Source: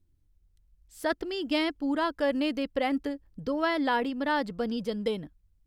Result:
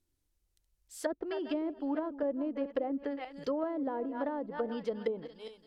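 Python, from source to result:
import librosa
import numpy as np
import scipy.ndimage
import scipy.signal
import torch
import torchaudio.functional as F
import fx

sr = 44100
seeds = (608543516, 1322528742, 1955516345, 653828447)

y = fx.reverse_delay_fb(x, sr, ms=203, feedback_pct=41, wet_db=-13)
y = fx.bass_treble(y, sr, bass_db=-14, treble_db=5)
y = fx.env_lowpass_down(y, sr, base_hz=460.0, full_db=-26.5)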